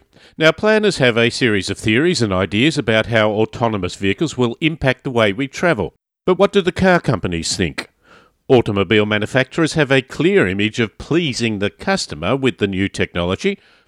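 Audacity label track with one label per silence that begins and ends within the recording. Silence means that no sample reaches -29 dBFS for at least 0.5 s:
7.850000	8.500000	silence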